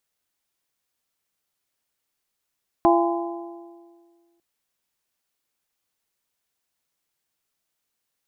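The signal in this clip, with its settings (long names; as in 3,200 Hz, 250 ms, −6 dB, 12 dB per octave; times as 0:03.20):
struck metal bell, lowest mode 341 Hz, modes 4, decay 1.84 s, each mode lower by 1.5 dB, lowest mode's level −15.5 dB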